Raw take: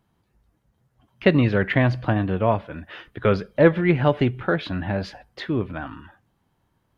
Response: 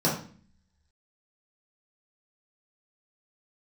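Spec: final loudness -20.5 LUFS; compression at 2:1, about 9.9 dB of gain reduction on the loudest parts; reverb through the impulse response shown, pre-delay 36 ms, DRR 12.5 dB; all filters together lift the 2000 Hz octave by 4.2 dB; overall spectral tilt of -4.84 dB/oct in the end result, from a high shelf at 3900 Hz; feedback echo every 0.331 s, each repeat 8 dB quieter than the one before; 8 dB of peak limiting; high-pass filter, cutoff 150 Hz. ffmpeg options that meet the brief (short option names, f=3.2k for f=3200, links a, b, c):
-filter_complex "[0:a]highpass=150,equalizer=f=2k:t=o:g=4,highshelf=f=3.9k:g=5,acompressor=threshold=-28dB:ratio=2,alimiter=limit=-17dB:level=0:latency=1,aecho=1:1:331|662|993|1324|1655:0.398|0.159|0.0637|0.0255|0.0102,asplit=2[a][b];[1:a]atrim=start_sample=2205,adelay=36[c];[b][c]afir=irnorm=-1:irlink=0,volume=-25.5dB[d];[a][d]amix=inputs=2:normalize=0,volume=9dB"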